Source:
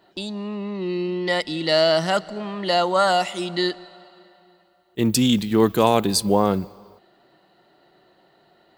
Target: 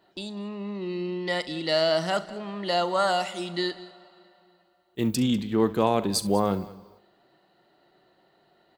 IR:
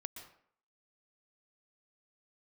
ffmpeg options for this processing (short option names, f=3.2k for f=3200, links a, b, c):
-filter_complex "[0:a]asplit=3[a][b][c];[a]afade=t=out:st=5.14:d=0.02[d];[b]lowpass=f=2.6k:p=1,afade=t=in:st=5.14:d=0.02,afade=t=out:st=6.12:d=0.02[e];[c]afade=t=in:st=6.12:d=0.02[f];[d][e][f]amix=inputs=3:normalize=0,asplit=2[g][h];[h]aecho=0:1:40|69|196:0.141|0.112|0.112[i];[g][i]amix=inputs=2:normalize=0,volume=-5.5dB"